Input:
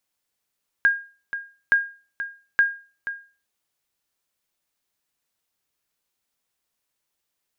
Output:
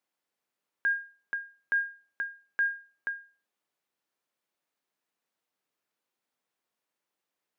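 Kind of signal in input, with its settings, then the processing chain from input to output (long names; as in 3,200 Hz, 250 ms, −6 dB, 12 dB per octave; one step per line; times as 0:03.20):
ping with an echo 1,620 Hz, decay 0.36 s, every 0.87 s, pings 3, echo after 0.48 s, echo −12 dB −10 dBFS
high-pass filter 200 Hz 12 dB per octave
high-shelf EQ 3,100 Hz −11.5 dB
brickwall limiter −21.5 dBFS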